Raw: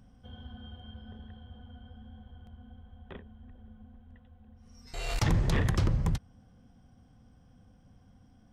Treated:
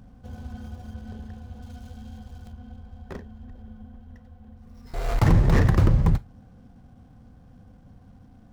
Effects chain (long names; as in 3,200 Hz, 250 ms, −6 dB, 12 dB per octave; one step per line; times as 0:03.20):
running median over 15 samples
0:01.62–0:02.52: high-shelf EQ 3,300 Hz +10.5 dB
on a send: convolution reverb, pre-delay 28 ms, DRR 18 dB
on the sum: level +8.5 dB